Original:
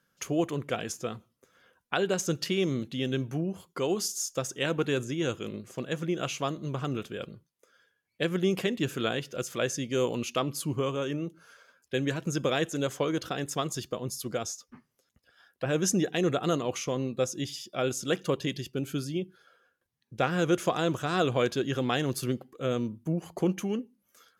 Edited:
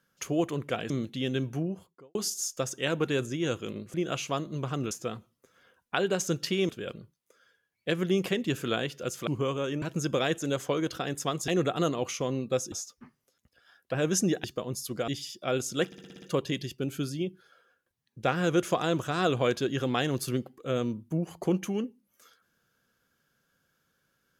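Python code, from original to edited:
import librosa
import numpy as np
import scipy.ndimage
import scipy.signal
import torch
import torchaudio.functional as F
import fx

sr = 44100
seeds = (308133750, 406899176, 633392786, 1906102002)

y = fx.studio_fade_out(x, sr, start_s=3.34, length_s=0.59)
y = fx.edit(y, sr, fx.move(start_s=0.9, length_s=1.78, to_s=7.02),
    fx.cut(start_s=5.72, length_s=0.33),
    fx.cut(start_s=9.6, length_s=1.05),
    fx.cut(start_s=11.2, length_s=0.93),
    fx.swap(start_s=13.79, length_s=0.64, other_s=16.15, other_length_s=1.24),
    fx.stutter(start_s=18.17, slice_s=0.06, count=7), tone=tone)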